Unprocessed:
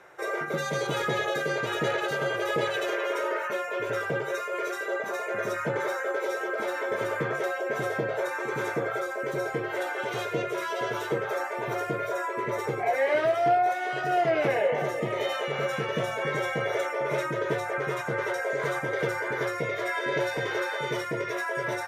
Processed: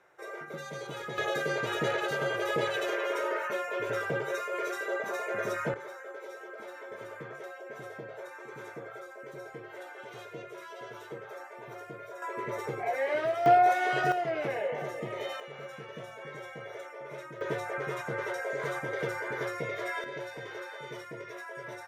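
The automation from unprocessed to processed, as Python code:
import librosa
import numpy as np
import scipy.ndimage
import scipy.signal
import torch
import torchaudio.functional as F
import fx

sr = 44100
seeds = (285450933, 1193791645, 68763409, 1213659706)

y = fx.gain(x, sr, db=fx.steps((0.0, -11.0), (1.18, -2.5), (5.74, -14.0), (12.22, -5.5), (13.46, 2.0), (14.12, -7.5), (15.4, -14.5), (17.41, -5.0), (20.04, -12.0)))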